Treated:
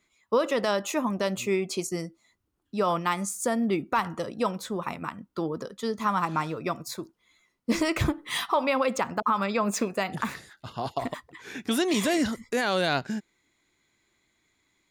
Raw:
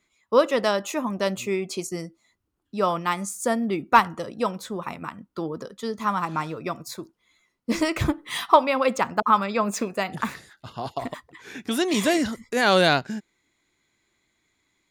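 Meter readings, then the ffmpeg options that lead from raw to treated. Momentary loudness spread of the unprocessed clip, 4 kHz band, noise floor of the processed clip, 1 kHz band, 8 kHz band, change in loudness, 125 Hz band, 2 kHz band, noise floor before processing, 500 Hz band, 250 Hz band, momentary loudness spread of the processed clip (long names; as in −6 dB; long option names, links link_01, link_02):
17 LU, −3.5 dB, −75 dBFS, −5.0 dB, −0.5 dB, −4.0 dB, −1.5 dB, −4.0 dB, −75 dBFS, −3.5 dB, −1.5 dB, 11 LU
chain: -af "alimiter=limit=-14.5dB:level=0:latency=1:release=79"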